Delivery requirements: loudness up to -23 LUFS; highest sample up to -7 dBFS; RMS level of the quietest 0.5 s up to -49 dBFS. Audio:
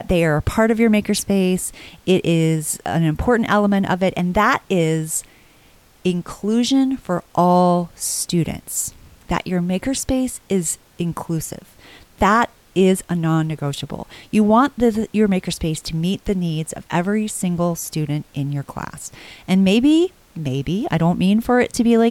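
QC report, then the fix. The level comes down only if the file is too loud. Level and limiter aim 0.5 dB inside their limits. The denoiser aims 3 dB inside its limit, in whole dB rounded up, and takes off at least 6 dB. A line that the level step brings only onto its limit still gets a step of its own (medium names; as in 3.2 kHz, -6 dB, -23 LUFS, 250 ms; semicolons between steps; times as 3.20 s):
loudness -19.0 LUFS: fail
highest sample -5.0 dBFS: fail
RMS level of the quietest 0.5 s -51 dBFS: pass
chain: trim -4.5 dB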